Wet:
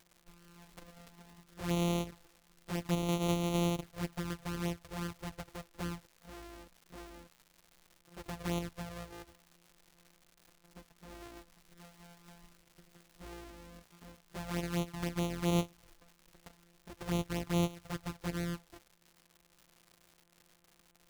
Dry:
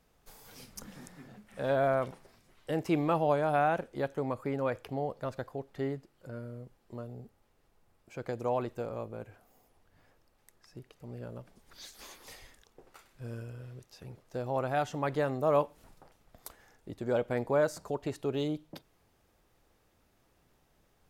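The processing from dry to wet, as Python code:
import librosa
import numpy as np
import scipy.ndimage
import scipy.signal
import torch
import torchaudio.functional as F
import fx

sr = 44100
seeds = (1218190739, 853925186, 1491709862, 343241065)

y = np.r_[np.sort(x[:len(x) // 256 * 256].reshape(-1, 256), axis=1).ravel(), x[len(x) // 256 * 256:]]
y = fx.env_flanger(y, sr, rest_ms=6.1, full_db=-26.0)
y = fx.dmg_crackle(y, sr, seeds[0], per_s=240.0, level_db=-45.0)
y = y * librosa.db_to_amplitude(-3.0)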